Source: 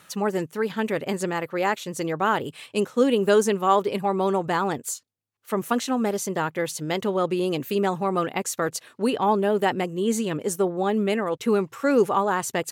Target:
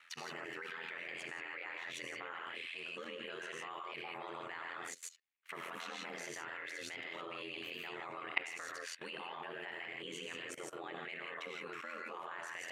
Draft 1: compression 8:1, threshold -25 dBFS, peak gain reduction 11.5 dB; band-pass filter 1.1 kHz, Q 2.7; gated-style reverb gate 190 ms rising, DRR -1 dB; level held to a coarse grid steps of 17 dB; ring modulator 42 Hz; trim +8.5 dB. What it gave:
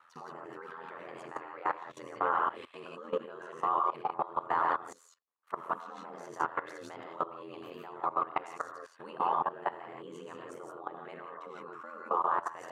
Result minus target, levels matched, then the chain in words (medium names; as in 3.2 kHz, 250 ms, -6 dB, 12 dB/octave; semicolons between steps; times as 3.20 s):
2 kHz band -10.0 dB
compression 8:1, threshold -25 dBFS, peak gain reduction 11.5 dB; band-pass filter 2.2 kHz, Q 2.7; gated-style reverb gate 190 ms rising, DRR -1 dB; level held to a coarse grid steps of 17 dB; ring modulator 42 Hz; trim +8.5 dB